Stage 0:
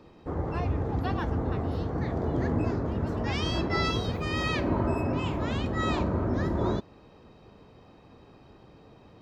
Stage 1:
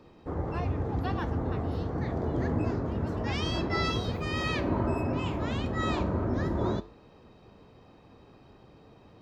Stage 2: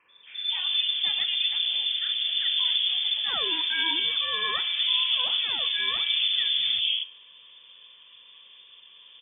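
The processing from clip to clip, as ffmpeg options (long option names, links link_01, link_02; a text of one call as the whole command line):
ffmpeg -i in.wav -af "flanger=delay=7.6:depth=3:regen=-86:speed=1.4:shape=sinusoidal,volume=3dB" out.wav
ffmpeg -i in.wav -filter_complex "[0:a]acrossover=split=190|1200[link_01][link_02][link_03];[link_01]adelay=80[link_04];[link_02]adelay=230[link_05];[link_04][link_05][link_03]amix=inputs=3:normalize=0,lowpass=frequency=3100:width_type=q:width=0.5098,lowpass=frequency=3100:width_type=q:width=0.6013,lowpass=frequency=3100:width_type=q:width=0.9,lowpass=frequency=3100:width_type=q:width=2.563,afreqshift=-3600,volume=4.5dB" out.wav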